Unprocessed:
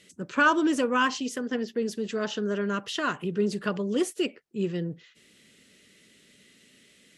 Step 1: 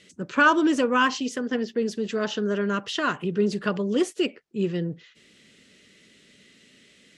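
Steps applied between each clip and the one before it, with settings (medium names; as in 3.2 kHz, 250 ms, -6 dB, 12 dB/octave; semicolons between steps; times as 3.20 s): low-pass 7.3 kHz 12 dB/octave; trim +3 dB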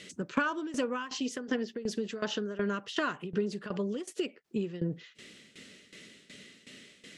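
bass shelf 61 Hz -10 dB; compression 16:1, threshold -32 dBFS, peak gain reduction 19.5 dB; tremolo saw down 2.7 Hz, depth 85%; trim +7 dB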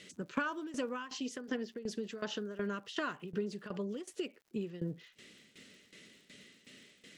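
crackle 150 per s -52 dBFS; trim -5.5 dB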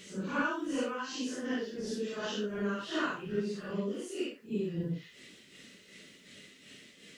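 phase randomisation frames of 200 ms; trim +4 dB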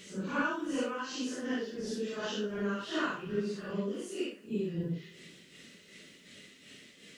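reverberation RT60 2.5 s, pre-delay 42 ms, DRR 19 dB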